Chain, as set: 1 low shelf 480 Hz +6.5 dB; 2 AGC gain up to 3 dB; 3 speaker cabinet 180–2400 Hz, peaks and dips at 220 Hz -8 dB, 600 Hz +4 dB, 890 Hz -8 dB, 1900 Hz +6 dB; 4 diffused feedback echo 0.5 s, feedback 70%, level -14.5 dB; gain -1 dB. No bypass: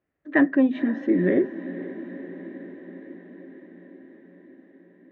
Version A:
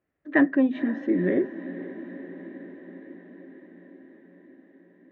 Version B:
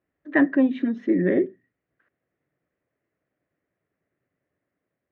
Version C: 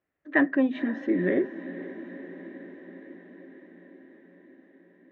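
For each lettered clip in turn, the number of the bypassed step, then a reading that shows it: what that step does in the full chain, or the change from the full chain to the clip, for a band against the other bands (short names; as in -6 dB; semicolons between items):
2, loudness change -1.5 LU; 4, echo-to-direct -11.5 dB to none; 1, 2 kHz band +3.5 dB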